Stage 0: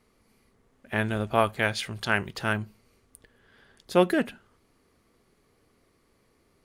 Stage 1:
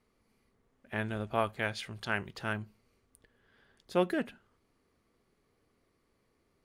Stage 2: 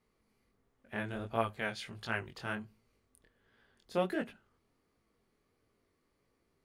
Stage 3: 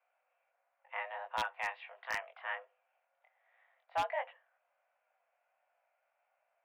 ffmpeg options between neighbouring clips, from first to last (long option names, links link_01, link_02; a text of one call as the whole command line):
ffmpeg -i in.wav -af "highshelf=frequency=6600:gain=-5,volume=-7.5dB" out.wav
ffmpeg -i in.wav -af "flanger=delay=17.5:depth=7.2:speed=1.4" out.wav
ffmpeg -i in.wav -af "highpass=frequency=300:width_type=q:width=0.5412,highpass=frequency=300:width_type=q:width=1.307,lowpass=frequency=2500:width_type=q:width=0.5176,lowpass=frequency=2500:width_type=q:width=0.7071,lowpass=frequency=2500:width_type=q:width=1.932,afreqshift=290,aeval=exprs='0.0531*(abs(mod(val(0)/0.0531+3,4)-2)-1)':channel_layout=same" out.wav